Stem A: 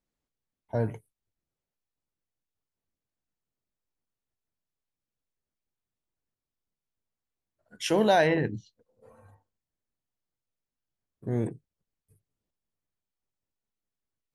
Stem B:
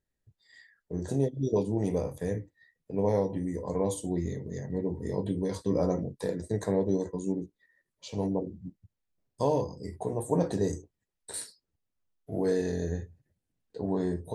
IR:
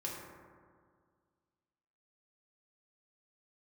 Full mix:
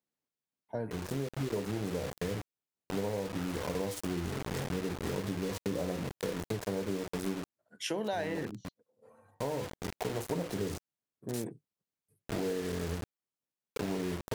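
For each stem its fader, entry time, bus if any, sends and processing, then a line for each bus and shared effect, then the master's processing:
-4.0 dB, 0.00 s, no send, HPF 150 Hz 12 dB/oct
+2.0 dB, 0.00 s, no send, bit-crush 6-bit; noise-modulated delay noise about 1200 Hz, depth 0.035 ms; auto duck -6 dB, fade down 0.40 s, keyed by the first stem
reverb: off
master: compressor, threshold -31 dBFS, peak gain reduction 12 dB

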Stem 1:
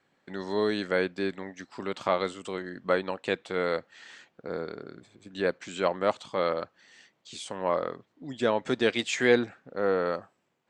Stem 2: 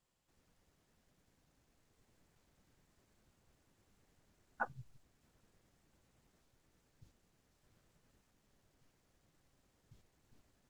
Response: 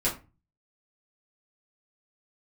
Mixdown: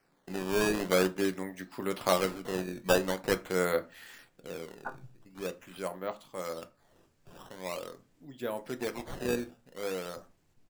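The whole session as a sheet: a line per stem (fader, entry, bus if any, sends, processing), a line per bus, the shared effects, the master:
4.02 s -2 dB -> 4.73 s -12 dB, 0.00 s, send -16 dB, decimation with a swept rate 12×, swing 160% 0.45 Hz
+0.5 dB, 0.25 s, send -16 dB, random-step tremolo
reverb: on, RT60 0.30 s, pre-delay 5 ms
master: dry

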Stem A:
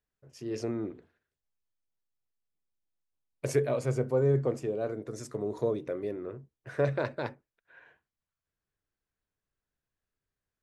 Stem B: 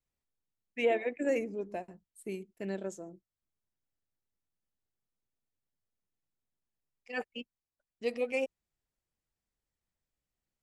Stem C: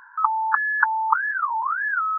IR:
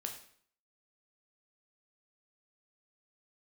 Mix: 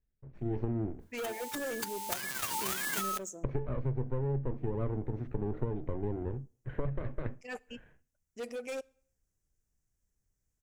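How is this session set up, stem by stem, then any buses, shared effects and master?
-4.0 dB, 0.00 s, send -19 dB, minimum comb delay 0.49 ms; LPF 3100 Hz 24 dB/oct; tilt -3.5 dB/oct
-4.0 dB, 0.35 s, send -18 dB, resonant high shelf 5000 Hz +7 dB, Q 3; hard clip -31.5 dBFS, distortion -8 dB
1.79 s -20.5 dB -> 2.55 s -10.5 dB, 1.00 s, send -17 dB, spectral whitening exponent 0.1; auto duck -22 dB, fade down 1.75 s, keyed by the first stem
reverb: on, RT60 0.55 s, pre-delay 6 ms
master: compressor 16:1, threshold -28 dBFS, peak gain reduction 14 dB

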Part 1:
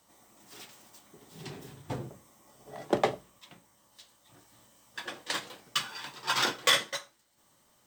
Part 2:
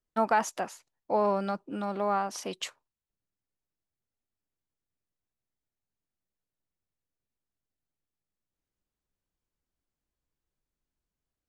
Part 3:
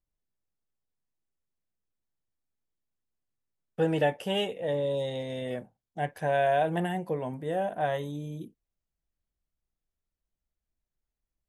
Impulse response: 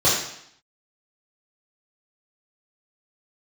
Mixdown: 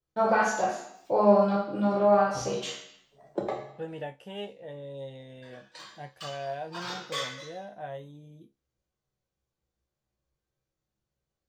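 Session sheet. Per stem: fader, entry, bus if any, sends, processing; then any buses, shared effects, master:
0.0 dB, 0.45 s, send -20.5 dB, per-bin expansion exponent 1.5; auto duck -8 dB, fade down 0.50 s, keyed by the third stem
-4.5 dB, 0.00 s, send -6 dB, dry
-6.0 dB, 0.00 s, no send, dry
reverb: on, RT60 0.70 s, pre-delay 3 ms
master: high shelf 8500 Hz -10.5 dB; resonator 68 Hz, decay 0.2 s, harmonics all, mix 80%

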